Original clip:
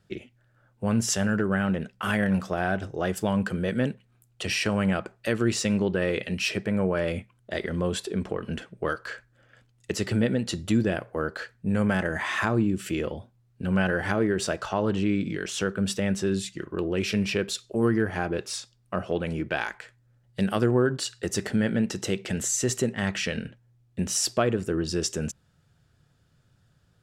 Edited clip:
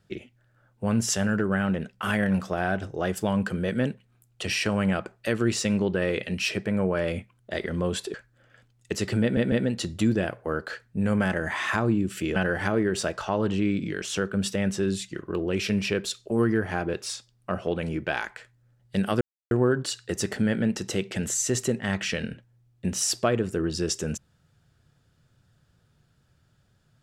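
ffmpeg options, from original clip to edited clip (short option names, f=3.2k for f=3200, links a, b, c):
-filter_complex "[0:a]asplit=6[a][b][c][d][e][f];[a]atrim=end=8.142[g];[b]atrim=start=9.128:end=10.362[h];[c]atrim=start=10.208:end=10.362[i];[d]atrim=start=10.208:end=13.052[j];[e]atrim=start=13.798:end=20.65,asetpts=PTS-STARTPTS,afade=t=out:st=6.848:d=0.004:c=hsin,apad=pad_dur=0.3[k];[f]atrim=start=20.65,asetpts=PTS-STARTPTS,afade=t=in:d=0.004:c=hsin[l];[g][h]acrossfade=d=0.004:c1=hsin:c2=hsin[m];[m][i]acrossfade=d=0.004:c1=hsin:c2=hsin[n];[n][j]acrossfade=d=0.004:c1=hsin:c2=hsin[o];[k][l]concat=n=2:v=0:a=1[p];[o][p]acrossfade=d=0.004:c1=hsin:c2=hsin"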